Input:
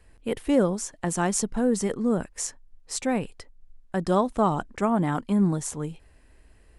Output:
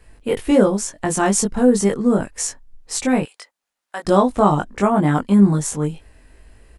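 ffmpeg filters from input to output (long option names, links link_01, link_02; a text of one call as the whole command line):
ffmpeg -i in.wav -filter_complex "[0:a]asettb=1/sr,asplit=3[link_01][link_02][link_03];[link_01]atrim=end=3.234[link_04];[link_02]atrim=start=3.23:end=4.05,asetpts=PTS-STARTPTS,afade=type=in:duration=0.004:curve=qsin,afade=type=out:start_time=0.816:duration=0.004:curve=qsin,highpass=890[link_05];[link_03]atrim=start=4.046[link_06];[link_04][link_05]acrossfade=duration=0.004:curve1=hsin:curve2=qsin[link_07];[link_07][link_06]acrossfade=duration=0.004:curve1=qsin:curve2=hsin,asplit=2[link_08][link_09];[link_09]adelay=20,volume=-2dB[link_10];[link_08][link_10]amix=inputs=2:normalize=0,volume=5.5dB" out.wav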